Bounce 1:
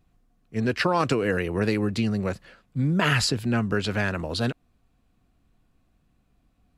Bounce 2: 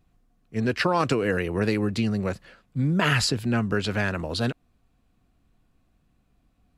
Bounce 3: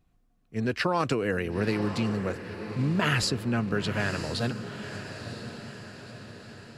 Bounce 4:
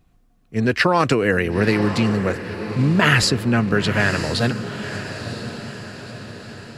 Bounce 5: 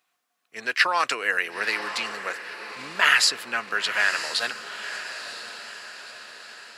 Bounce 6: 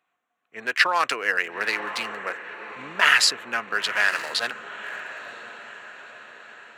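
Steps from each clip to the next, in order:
nothing audible
diffused feedback echo 0.988 s, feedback 53%, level -10 dB; gain -3.5 dB
dynamic EQ 1900 Hz, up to +4 dB, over -46 dBFS, Q 3.1; gain +9 dB
HPF 1100 Hz 12 dB/oct
Wiener smoothing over 9 samples; gain +1.5 dB

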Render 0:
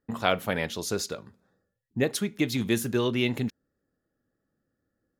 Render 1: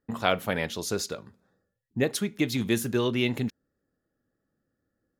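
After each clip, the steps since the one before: nothing audible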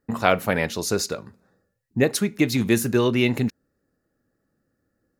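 bell 3300 Hz -9.5 dB 0.21 oct; gain +6 dB

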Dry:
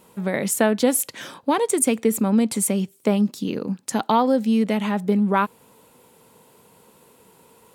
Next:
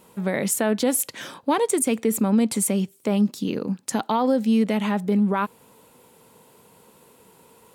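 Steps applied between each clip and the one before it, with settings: limiter -12 dBFS, peak gain reduction 6 dB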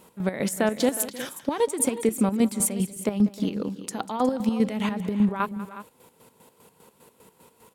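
chopper 5 Hz, depth 65%, duty 45%; on a send: tapped delay 0.193/0.31/0.363 s -17/-19.5/-14.5 dB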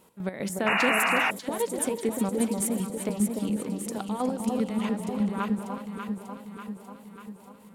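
echo with dull and thin repeats by turns 0.296 s, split 1000 Hz, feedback 76%, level -3.5 dB; painted sound noise, 0.66–1.31, 630–2900 Hz -19 dBFS; gain -5.5 dB

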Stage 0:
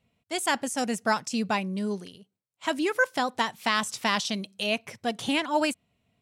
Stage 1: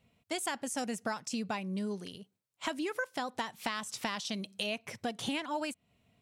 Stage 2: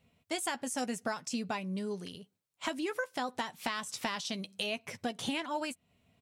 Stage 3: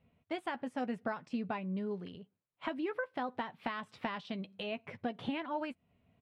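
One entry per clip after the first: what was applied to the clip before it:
compressor 6:1, threshold -35 dBFS, peak gain reduction 15.5 dB; gain +2 dB
doubler 12 ms -10.5 dB
air absorption 440 m

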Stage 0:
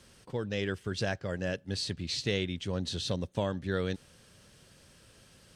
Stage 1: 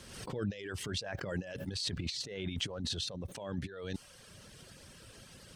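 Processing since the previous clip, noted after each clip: negative-ratio compressor -38 dBFS, ratio -0.5; reverb removal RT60 0.8 s; backwards sustainer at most 50 dB/s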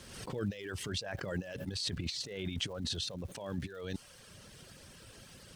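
crackle 380/s -52 dBFS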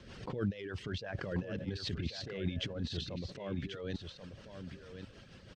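rotary speaker horn 6.3 Hz; air absorption 170 m; echo 1.086 s -8.5 dB; gain +2.5 dB

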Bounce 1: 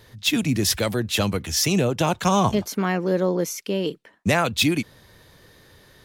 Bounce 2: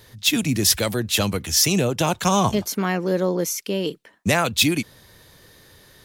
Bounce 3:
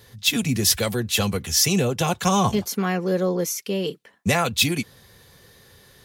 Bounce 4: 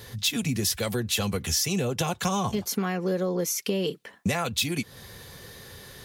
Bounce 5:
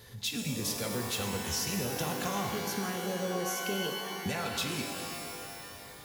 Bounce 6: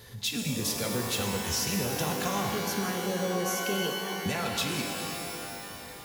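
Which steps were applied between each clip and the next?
high shelf 4600 Hz +7 dB
notch comb 310 Hz
compressor 6:1, threshold -31 dBFS, peak gain reduction 16 dB; gain +6.5 dB
shimmer reverb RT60 2.4 s, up +12 st, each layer -2 dB, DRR 3 dB; gain -9 dB
reverb RT60 4.2 s, pre-delay 0.114 s, DRR 10.5 dB; gain +3 dB

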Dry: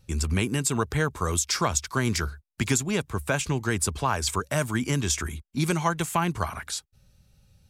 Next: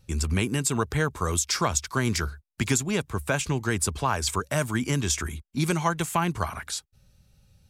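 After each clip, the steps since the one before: nothing audible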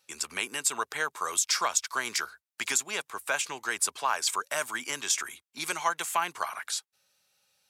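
HPF 790 Hz 12 dB/oct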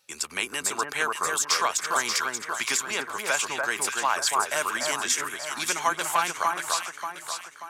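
de-esser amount 40%; on a send: echo with dull and thin repeats by turns 0.292 s, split 1700 Hz, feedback 66%, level -2 dB; on the sum: gain +3 dB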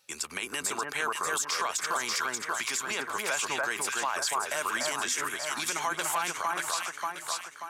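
limiter -19.5 dBFS, peak gain reduction 11 dB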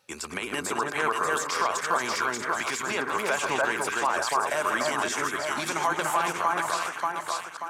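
reverse delay 0.113 s, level -6.5 dB; high shelf 2100 Hz -12 dB; gain +7.5 dB

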